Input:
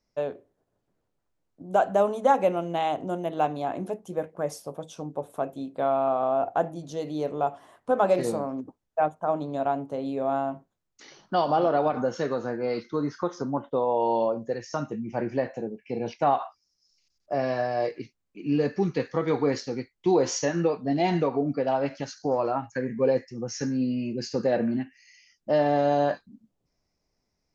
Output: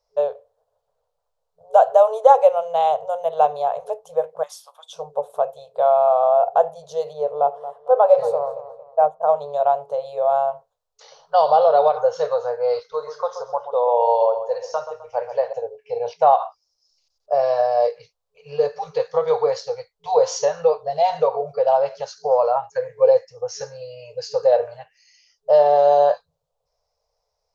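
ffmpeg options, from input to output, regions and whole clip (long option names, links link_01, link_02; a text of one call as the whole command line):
ffmpeg -i in.wav -filter_complex "[0:a]asettb=1/sr,asplit=3[link_01][link_02][link_03];[link_01]atrim=end=4.434[link_04];[link_02]atrim=start=4.43:end=4.93,asetpts=PTS-STARTPTS,afade=type=in:duration=0.004:curve=qsin,afade=type=out:start_time=0.496:duration=0.004:curve=qsin,highpass=frequency=1200:width=0.5412,highpass=frequency=1200:width=1.3066,equalizer=frequency=3400:width=4.1:gain=9.5[link_05];[link_03]atrim=start=4.926[link_06];[link_04][link_05]acrossfade=duration=0.004:curve1=hsin:curve2=qsin[link_07];[link_07][link_06]acrossfade=duration=0.004:curve1=qsin:curve2=hsin,asettb=1/sr,asplit=3[link_08][link_09][link_10];[link_08]atrim=end=7.134[link_11];[link_09]atrim=start=7.13:end=9.22,asetpts=PTS-STARTPTS,afade=type=in:duration=0.004:curve=qsin,afade=type=out:start_time=2.086:duration=0.004:curve=qsin,highshelf=frequency=2400:gain=-12,asplit=2[link_12][link_13];[link_13]adelay=227,lowpass=frequency=3900:poles=1,volume=-14dB,asplit=2[link_14][link_15];[link_15]adelay=227,lowpass=frequency=3900:poles=1,volume=0.36,asplit=2[link_16][link_17];[link_17]adelay=227,lowpass=frequency=3900:poles=1,volume=0.36[link_18];[link_12][link_14][link_16][link_18]amix=inputs=4:normalize=0,atrim=end_sample=92169[link_19];[link_10]atrim=start=9.216[link_20];[link_11][link_19]acrossfade=duration=0.004:curve1=hsin:curve2=qsin[link_21];[link_21][link_20]acrossfade=duration=0.004:curve1=qsin:curve2=hsin,asettb=1/sr,asplit=3[link_22][link_23][link_24];[link_22]atrim=end=11.444[link_25];[link_23]atrim=start=11.44:end=11.98,asetpts=PTS-STARTPTS,afade=type=in:duration=0.004:curve=qsin,afade=type=out:start_time=0.536:duration=0.004:curve=qsin,lowpass=6900,equalizer=frequency=3900:width_type=o:width=0.28:gain=10.5[link_26];[link_24]atrim=start=11.976[link_27];[link_25][link_26]acrossfade=duration=0.004:curve1=hsin:curve2=qsin[link_28];[link_28][link_27]acrossfade=duration=0.004:curve1=qsin:curve2=hsin,asettb=1/sr,asplit=3[link_29][link_30][link_31];[link_29]atrim=end=12.794[link_32];[link_30]atrim=start=12.79:end=15.53,asetpts=PTS-STARTPTS,afade=type=in:duration=0.004:curve=qsin,afade=type=out:start_time=2.736:duration=0.004:curve=qsin,equalizer=frequency=170:width_type=o:width=1.5:gain=-14,asplit=2[link_33][link_34];[link_34]adelay=129,lowpass=frequency=4000:poles=1,volume=-10dB,asplit=2[link_35][link_36];[link_36]adelay=129,lowpass=frequency=4000:poles=1,volume=0.38,asplit=2[link_37][link_38];[link_38]adelay=129,lowpass=frequency=4000:poles=1,volume=0.38,asplit=2[link_39][link_40];[link_40]adelay=129,lowpass=frequency=4000:poles=1,volume=0.38[link_41];[link_33][link_35][link_37][link_39][link_41]amix=inputs=5:normalize=0,atrim=end_sample=120834[link_42];[link_31]atrim=start=15.526[link_43];[link_32][link_42]acrossfade=duration=0.004:curve1=hsin:curve2=qsin[link_44];[link_44][link_43]acrossfade=duration=0.004:curve1=qsin:curve2=hsin,equalizer=frequency=125:width_type=o:width=1:gain=-10,equalizer=frequency=250:width_type=o:width=1:gain=-7,equalizer=frequency=500:width_type=o:width=1:gain=7,equalizer=frequency=1000:width_type=o:width=1:gain=3,equalizer=frequency=2000:width_type=o:width=1:gain=-9,equalizer=frequency=4000:width_type=o:width=1:gain=5,afftfilt=real='re*(1-between(b*sr/4096,170,430))':imag='im*(1-between(b*sr/4096,170,430))':win_size=4096:overlap=0.75,equalizer=frequency=780:width=0.78:gain=5.5" out.wav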